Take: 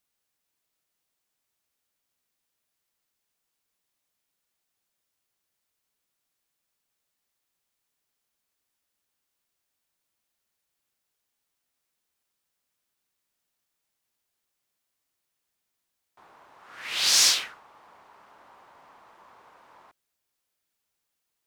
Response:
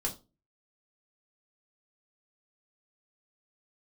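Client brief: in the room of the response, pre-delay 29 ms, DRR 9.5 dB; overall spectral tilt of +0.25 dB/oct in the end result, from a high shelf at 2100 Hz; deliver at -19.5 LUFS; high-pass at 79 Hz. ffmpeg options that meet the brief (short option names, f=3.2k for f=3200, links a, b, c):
-filter_complex "[0:a]highpass=79,highshelf=f=2.1k:g=-5.5,asplit=2[a][b];[1:a]atrim=start_sample=2205,adelay=29[c];[b][c]afir=irnorm=-1:irlink=0,volume=-12.5dB[d];[a][d]amix=inputs=2:normalize=0,volume=5dB"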